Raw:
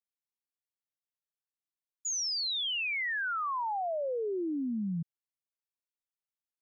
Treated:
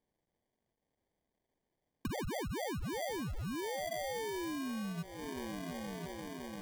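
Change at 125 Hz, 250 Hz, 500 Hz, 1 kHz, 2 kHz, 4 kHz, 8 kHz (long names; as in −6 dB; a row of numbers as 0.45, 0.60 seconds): +1.5 dB, −2.0 dB, −3.0 dB, −7.0 dB, −10.5 dB, −13.0 dB, can't be measured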